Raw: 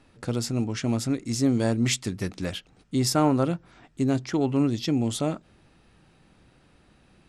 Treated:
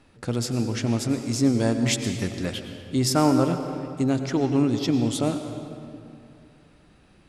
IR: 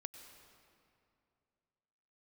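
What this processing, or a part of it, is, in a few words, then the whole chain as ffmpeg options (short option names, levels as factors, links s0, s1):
stairwell: -filter_complex "[1:a]atrim=start_sample=2205[s0];[0:a][s0]afir=irnorm=-1:irlink=0,volume=2"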